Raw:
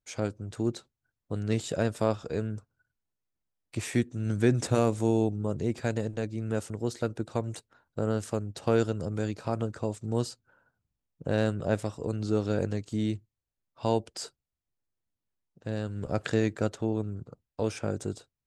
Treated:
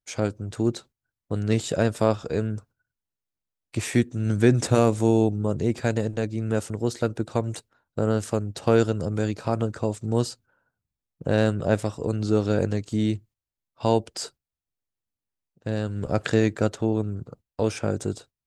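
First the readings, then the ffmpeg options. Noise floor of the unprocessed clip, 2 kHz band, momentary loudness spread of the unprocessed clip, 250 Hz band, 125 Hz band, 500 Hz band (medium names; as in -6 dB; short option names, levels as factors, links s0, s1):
under -85 dBFS, +5.5 dB, 12 LU, +5.5 dB, +5.5 dB, +5.5 dB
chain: -af "agate=range=0.355:threshold=0.00224:ratio=16:detection=peak,volume=1.88"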